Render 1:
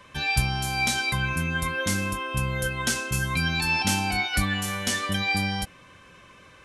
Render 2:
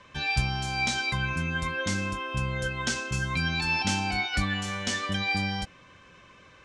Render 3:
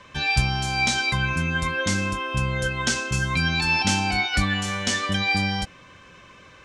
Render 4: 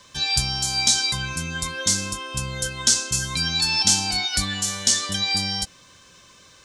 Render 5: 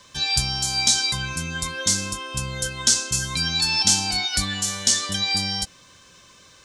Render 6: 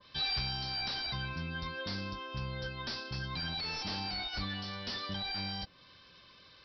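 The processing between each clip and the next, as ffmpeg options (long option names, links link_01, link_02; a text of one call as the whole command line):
ffmpeg -i in.wav -af "lowpass=frequency=7300:width=0.5412,lowpass=frequency=7300:width=1.3066,volume=-2.5dB" out.wav
ffmpeg -i in.wav -af "highshelf=frequency=9700:gain=5,volume=5dB" out.wav
ffmpeg -i in.wav -af "aexciter=amount=7.4:drive=1.6:freq=3600,volume=-5.5dB" out.wav
ffmpeg -i in.wav -af anull out.wav
ffmpeg -i in.wav -af "aemphasis=mode=production:type=cd,aresample=11025,volume=22dB,asoftclip=hard,volume=-22dB,aresample=44100,adynamicequalizer=threshold=0.00794:dfrequency=1700:dqfactor=0.7:tfrequency=1700:tqfactor=0.7:attack=5:release=100:ratio=0.375:range=3.5:mode=cutabove:tftype=highshelf,volume=-7.5dB" out.wav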